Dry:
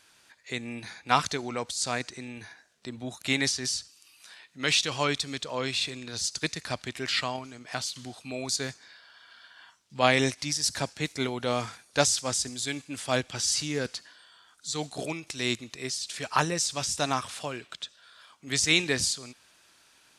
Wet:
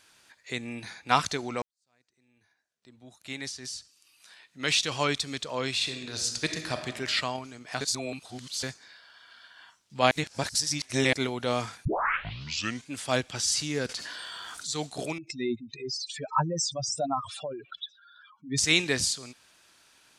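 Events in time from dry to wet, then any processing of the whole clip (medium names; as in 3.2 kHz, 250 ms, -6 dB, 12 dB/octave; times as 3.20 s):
1.62–4.92 s: fade in quadratic
5.75–6.88 s: reverb throw, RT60 1.2 s, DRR 5.5 dB
7.81–8.63 s: reverse
10.11–11.13 s: reverse
11.85 s: tape start 1.05 s
13.89–14.67 s: level flattener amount 70%
15.18–18.58 s: spectral contrast enhancement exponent 3.6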